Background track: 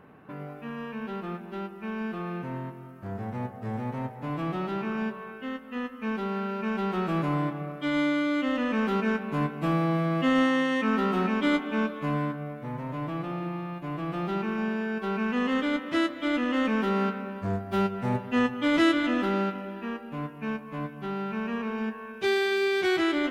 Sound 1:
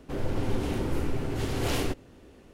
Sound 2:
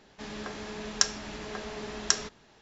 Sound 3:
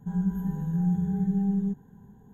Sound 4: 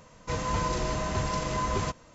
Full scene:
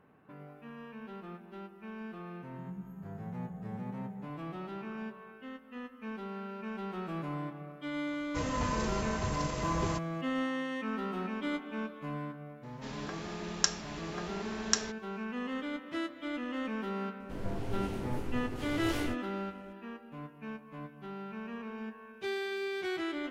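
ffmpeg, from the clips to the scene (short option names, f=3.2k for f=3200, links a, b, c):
-filter_complex "[0:a]volume=-10.5dB[a];[3:a]highpass=65[b];[1:a]flanger=delay=16.5:depth=6.8:speed=1.7[c];[b]atrim=end=2.33,asetpts=PTS-STARTPTS,volume=-17dB,afade=t=in:d=0.004:c=hsin,afade=t=out:st=2.326:d=0.004:c=hsin,adelay=2520[d];[4:a]atrim=end=2.14,asetpts=PTS-STARTPTS,volume=-5dB,afade=t=in:d=0.004:c=hsin,afade=t=out:st=2.136:d=0.004:c=hsin,adelay=8070[e];[2:a]atrim=end=2.61,asetpts=PTS-STARTPTS,volume=-3.5dB,afade=t=in:d=0.004:c=hsin,afade=t=out:st=2.606:d=0.004:c=hsin,adelay=12630[f];[c]atrim=end=2.53,asetpts=PTS-STARTPTS,volume=-6dB,afade=t=in:d=0.004:c=hsin,afade=t=out:st=2.526:d=0.004:c=hsin,adelay=17200[g];[a][d][e][f][g]amix=inputs=5:normalize=0"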